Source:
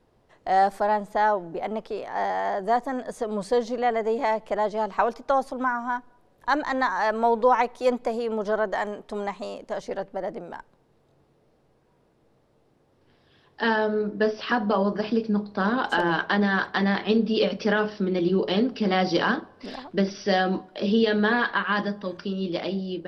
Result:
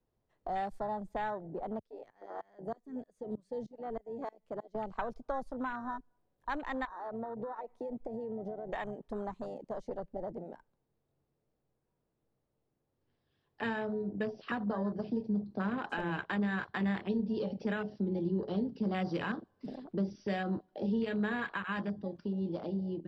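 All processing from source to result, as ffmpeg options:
-filter_complex "[0:a]asettb=1/sr,asplit=3[a][b][c];[a]atrim=end=1.794[d];[b]atrim=start=1.79:end=4.75,asetpts=PTS-STARTPTS,afade=t=in:d=0.004:c=qsin,afade=t=out:st=2.956:d=0.004:c=qsin,equalizer=f=830:t=o:w=0.67:g=-7,aeval=exprs='val(0)*pow(10,-20*if(lt(mod(-3.2*n/s,1),2*abs(-3.2)/1000),1-mod(-3.2*n/s,1)/(2*abs(-3.2)/1000),(mod(-3.2*n/s,1)-2*abs(-3.2)/1000)/(1-2*abs(-3.2)/1000))/20)':c=same[e];[c]atrim=start=4.746[f];[d][e]acrossfade=d=0.004:c1=hsin:c2=qsin[g];[g][f]acrossfade=d=0.004:c1=qsin:c2=hsin,asettb=1/sr,asplit=3[h][i][j];[h]atrim=end=6.854[k];[i]atrim=start=6.85:end=8.69,asetpts=PTS-STARTPTS,afade=t=in:d=0.004:c=qsin,afade=t=out:st=1.836:d=0.004:c=qsin,highshelf=f=2.1k:g=-10,acompressor=threshold=-29dB:ratio=8:attack=3.2:release=140:knee=1:detection=peak[l];[j]atrim=start=8.686[m];[k][l]acrossfade=d=0.004:c1=hsin:c2=qsin[n];[n][m]acrossfade=d=0.004:c1=qsin:c2=hsin,afwtdn=0.0316,acrossover=split=140|3000[o][p][q];[p]acompressor=threshold=-35dB:ratio=2.5[r];[o][r][q]amix=inputs=3:normalize=0,lowshelf=f=200:g=6.5,volume=-4.5dB"

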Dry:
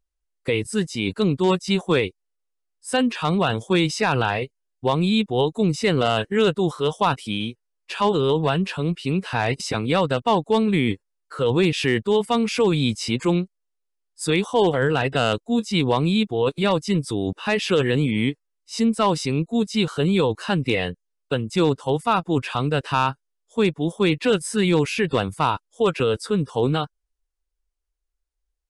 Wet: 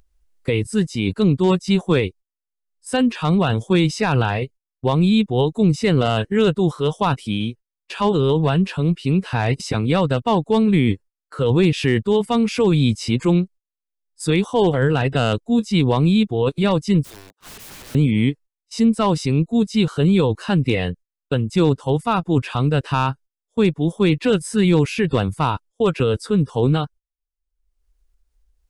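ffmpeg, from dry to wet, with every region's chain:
-filter_complex "[0:a]asettb=1/sr,asplit=3[a][b][c];[a]atrim=end=17.034[d];[b]atrim=start=17.03:end=17.95,asetpts=PTS-STARTPTS,afade=t=in:d=0.004:c=qsin,afade=t=out:st=0.916:d=0.004:c=qsin,highpass=920,equalizer=f=2.6k:w=1.4:g=-14,aeval=exprs='(mod(56.2*val(0)+1,2)-1)/56.2':c=same[e];[c]atrim=start=17.946[f];[d][e]acrossfade=d=0.004:c1=hsin:c2=qsin[g];[g][f]acrossfade=d=0.004:c1=qsin:c2=hsin,agate=range=-21dB:threshold=-41dB:ratio=16:detection=peak,lowshelf=f=240:g=10,acompressor=mode=upward:threshold=-35dB:ratio=2.5,volume=-1dB"

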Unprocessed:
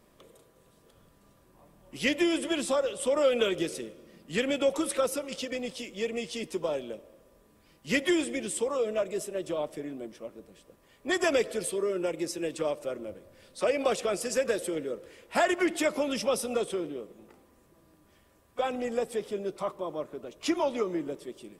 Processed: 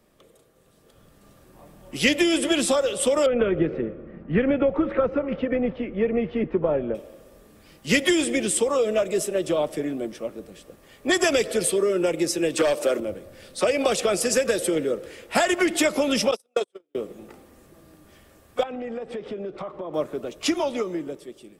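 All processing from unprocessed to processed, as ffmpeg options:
-filter_complex "[0:a]asettb=1/sr,asplit=3[a][b][c];[a]atrim=end=3.264[d];[b]atrim=start=3.26:end=6.95,asetpts=PTS-STARTPTS,afade=t=in:d=0.004:c=qsin,afade=t=out:st=3.686:d=0.004:c=qsin,lowpass=f=1.9k:w=0.5412,lowpass=f=1.9k:w=1.3066,lowshelf=f=150:g=10.5[e];[c]atrim=start=6.946[f];[d][e]acrossfade=d=0.004:c1=hsin:c2=qsin[g];[g][f]acrossfade=d=0.004:c1=qsin:c2=hsin,asettb=1/sr,asplit=3[h][i][j];[h]atrim=end=12.574[k];[i]atrim=start=12.57:end=13,asetpts=PTS-STARTPTS,afade=t=in:d=0.004:c=qsin,afade=t=out:st=0.426:d=0.004:c=qsin,highpass=270,aeval=exprs='0.106*sin(PI/2*1.58*val(0)/0.106)':c=same[l];[j]atrim=start=12.996[m];[k][l]acrossfade=d=0.004:c1=hsin:c2=qsin[n];[n][m]acrossfade=d=0.004:c1=qsin:c2=hsin,asettb=1/sr,asplit=3[o][p][q];[o]atrim=end=16.314[r];[p]atrim=start=16.31:end=16.95,asetpts=PTS-STARTPTS,afade=t=in:d=0.004:c=qsin,afade=t=out:st=0.636:d=0.004:c=qsin,highpass=340,agate=range=-47dB:threshold=-29dB:ratio=16:release=100:detection=peak[s];[q]atrim=start=16.946[t];[r][s]acrossfade=d=0.004:c1=hsin:c2=qsin[u];[u][t]acrossfade=d=0.004:c1=qsin:c2=hsin,asettb=1/sr,asplit=3[v][w][x];[v]atrim=end=18.634[y];[w]atrim=start=18.63:end=19.94,asetpts=PTS-STARTPTS,afade=t=in:d=0.004:c=qsin,afade=t=out:st=1.306:d=0.004:c=qsin,lowpass=2.6k,acompressor=threshold=-38dB:ratio=16:attack=3.2:release=140:knee=1:detection=peak[z];[x]atrim=start=19.936[aa];[y][z]acrossfade=d=0.004:c1=hsin:c2=qsin[ab];[ab][aa]acrossfade=d=0.004:c1=qsin:c2=hsin,acrossover=split=150|3000[ac][ad][ae];[ad]acompressor=threshold=-28dB:ratio=6[af];[ac][af][ae]amix=inputs=3:normalize=0,bandreject=f=1k:w=14,dynaudnorm=f=130:g=17:m=10dB"

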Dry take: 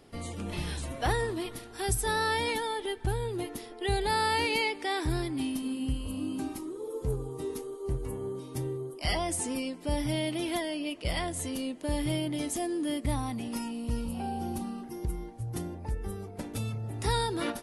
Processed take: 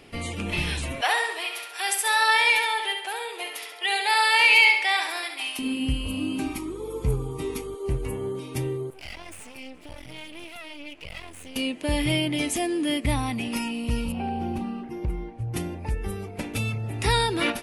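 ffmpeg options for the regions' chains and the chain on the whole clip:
-filter_complex "[0:a]asettb=1/sr,asplit=3[a][b][c];[a]atrim=end=1.014[d];[b]atrim=start=1.01:end=5.59,asetpts=PTS-STARTPTS,afade=t=in:d=0.004:c=qsin,afade=t=out:st=4.576:d=0.004:c=qsin,highpass=f=600:w=0.5412,highpass=f=600:w=1.3066,aecho=1:1:68|136|204|272|340:0.501|0.216|0.0927|0.0398|0.0171,atrim=end_sample=201978[e];[c]atrim=start=5.586[f];[d][e]acrossfade=d=0.004:c1=hsin:c2=qsin[g];[g][f]acrossfade=d=0.004:c1=qsin:c2=hsin,asettb=1/sr,asplit=3[h][i][j];[h]atrim=end=6.464[k];[i]atrim=start=6.46:end=7.75,asetpts=PTS-STARTPTS,afade=t=in:d=0.004:c=qsin,afade=t=out:st=1.286:d=0.004:c=qsin,aeval=exprs='val(0)+0.00316*(sin(2*PI*50*n/s)+sin(2*PI*2*50*n/s)/2+sin(2*PI*3*50*n/s)/3+sin(2*PI*4*50*n/s)/4+sin(2*PI*5*50*n/s)/5)':c=same,aecho=1:1:0.9:0.31,atrim=end_sample=56889[l];[j]atrim=start=7.746[m];[k][l]acrossfade=d=0.004:c1=hsin:c2=qsin[n];[n][m]acrossfade=d=0.004:c1=qsin:c2=hsin,asettb=1/sr,asplit=3[o][p][q];[o]atrim=end=8.904[r];[p]atrim=start=8.9:end=11.56,asetpts=PTS-STARTPTS,afade=t=in:d=0.004:c=qsin,afade=t=out:st=2.656:d=0.004:c=qsin,acompressor=threshold=-40dB:ratio=3:attack=3.2:release=140:knee=1:detection=peak,flanger=delay=1.4:depth=2.5:regen=-33:speed=1.8:shape=sinusoidal,aeval=exprs='max(val(0),0)':c=same[s];[q]atrim=start=11.556[t];[r][s]acrossfade=d=0.004:c1=hsin:c2=qsin[u];[u][t]acrossfade=d=0.004:c1=qsin:c2=hsin,asettb=1/sr,asplit=3[v][w][x];[v]atrim=end=14.124[y];[w]atrim=start=14.12:end=15.54,asetpts=PTS-STARTPTS,afade=t=in:d=0.004:c=qsin,afade=t=out:st=1.416:d=0.004:c=qsin,lowpass=f=1.5k:p=1,asoftclip=type=hard:threshold=-26dB[z];[x]atrim=start=15.536[aa];[y][z]acrossfade=d=0.004:c1=hsin:c2=qsin[ab];[ab][aa]acrossfade=d=0.004:c1=qsin:c2=hsin,equalizer=f=2.5k:t=o:w=0.74:g=11.5,acontrast=31"

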